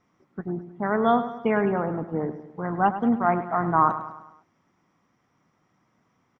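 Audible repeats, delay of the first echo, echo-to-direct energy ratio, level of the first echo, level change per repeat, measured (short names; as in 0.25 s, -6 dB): 4, 0.103 s, -11.0 dB, -12.0 dB, -6.0 dB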